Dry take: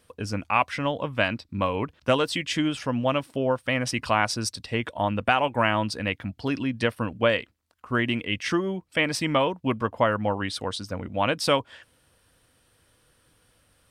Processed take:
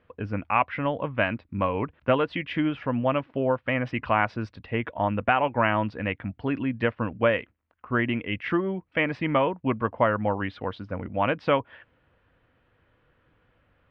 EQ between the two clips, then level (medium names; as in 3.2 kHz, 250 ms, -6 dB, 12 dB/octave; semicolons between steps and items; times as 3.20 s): low-pass 2.5 kHz 24 dB/octave; 0.0 dB